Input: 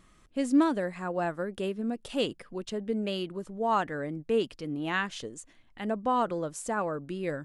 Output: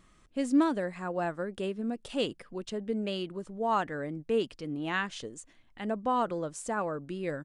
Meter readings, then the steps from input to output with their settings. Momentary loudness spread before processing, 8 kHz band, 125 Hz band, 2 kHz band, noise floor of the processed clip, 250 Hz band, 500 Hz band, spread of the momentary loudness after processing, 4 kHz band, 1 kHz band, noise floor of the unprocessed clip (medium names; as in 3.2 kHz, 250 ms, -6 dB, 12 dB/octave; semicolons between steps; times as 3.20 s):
10 LU, -1.5 dB, -1.5 dB, -1.5 dB, -62 dBFS, -1.5 dB, -1.5 dB, 10 LU, -1.5 dB, -1.5 dB, -60 dBFS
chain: resampled via 22.05 kHz; trim -1.5 dB